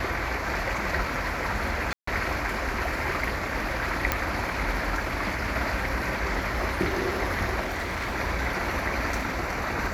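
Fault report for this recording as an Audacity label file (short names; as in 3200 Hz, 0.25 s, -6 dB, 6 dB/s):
1.930000	2.070000	gap 0.144 s
4.120000	4.120000	pop -6 dBFS
7.590000	8.160000	clipped -26.5 dBFS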